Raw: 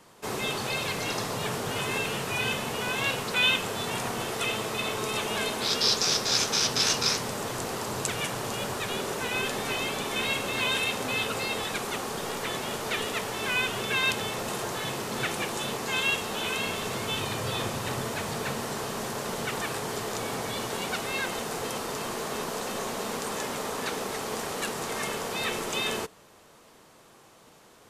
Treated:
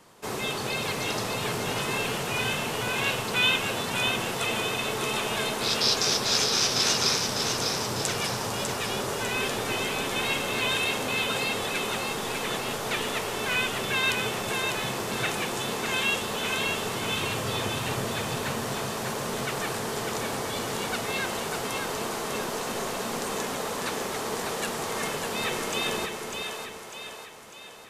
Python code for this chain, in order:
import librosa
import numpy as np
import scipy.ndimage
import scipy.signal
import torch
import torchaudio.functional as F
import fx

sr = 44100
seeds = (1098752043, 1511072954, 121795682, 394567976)

y = fx.echo_split(x, sr, split_hz=470.0, low_ms=361, high_ms=599, feedback_pct=52, wet_db=-5.0)